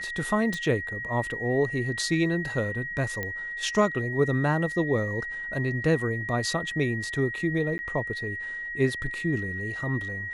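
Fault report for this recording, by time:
whistle 1,900 Hz −32 dBFS
0:00.54: click
0:03.23: click −17 dBFS
0:07.78–0:07.79: drop-out 10 ms

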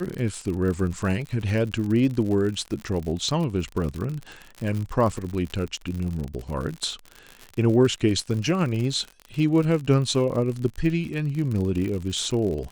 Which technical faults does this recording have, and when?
surface crackle 66 per second −29 dBFS

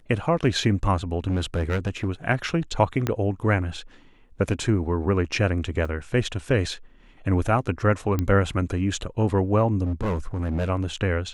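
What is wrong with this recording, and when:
0:01.29–0:02.09: clipping −19.5 dBFS
0:03.07: click −10 dBFS
0:05.85: drop-out 3.6 ms
0:08.19: click −12 dBFS
0:09.84–0:10.70: clipping −22 dBFS

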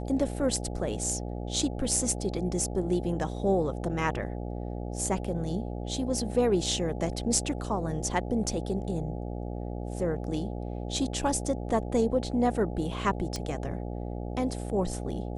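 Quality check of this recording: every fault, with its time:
mains buzz 60 Hz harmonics 14 −35 dBFS
0:13.36: click −19 dBFS

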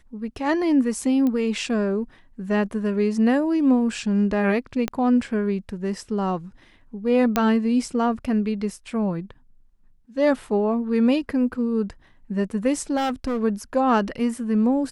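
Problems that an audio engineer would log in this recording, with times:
0:01.27: click −15 dBFS
0:04.88: click −11 dBFS
0:07.36: click −6 dBFS
0:12.96–0:13.43: clipping −21 dBFS

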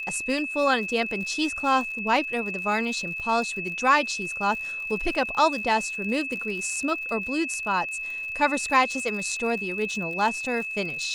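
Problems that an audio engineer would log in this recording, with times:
surface crackle 70 per second −34 dBFS
whistle 2,600 Hz −30 dBFS

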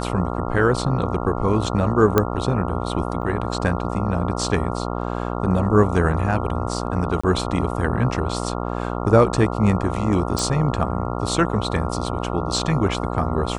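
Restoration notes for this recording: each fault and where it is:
mains buzz 60 Hz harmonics 23 −26 dBFS
0:02.18: click −3 dBFS
0:03.22–0:03.23: drop-out 5.2 ms
0:07.21–0:07.24: drop-out 25 ms
0:10.39: click

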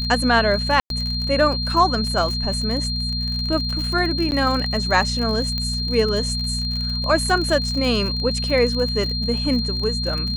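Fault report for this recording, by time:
surface crackle 48 per second −25 dBFS
mains hum 60 Hz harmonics 4 −26 dBFS
whistle 4,200 Hz −25 dBFS
0:00.80–0:00.90: drop-out 102 ms
0:04.31–0:04.32: drop-out 9.9 ms
0:05.58: click −12 dBFS

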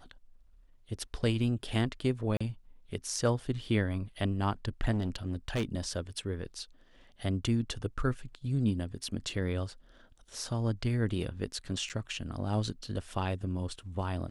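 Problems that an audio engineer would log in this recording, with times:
0:02.37–0:02.40: drop-out 35 ms
0:04.91–0:05.65: clipping −27 dBFS
0:11.89–0:11.90: drop-out 8.3 ms

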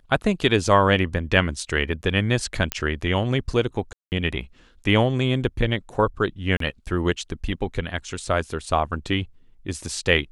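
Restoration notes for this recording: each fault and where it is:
0:02.72: click −5 dBFS
0:03.93–0:04.12: drop-out 189 ms
0:06.57–0:06.60: drop-out 33 ms

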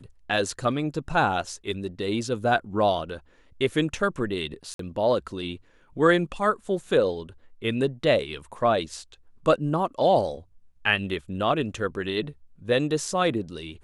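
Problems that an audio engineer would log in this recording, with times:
0:04.74–0:04.79: drop-out 53 ms

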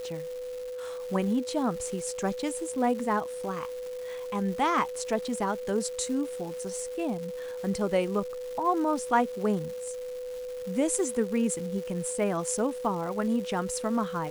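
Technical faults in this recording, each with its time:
surface crackle 520 per second −38 dBFS
whistle 500 Hz −34 dBFS

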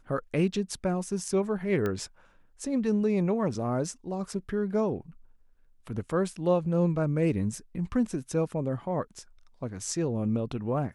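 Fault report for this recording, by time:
0:01.86: click −18 dBFS

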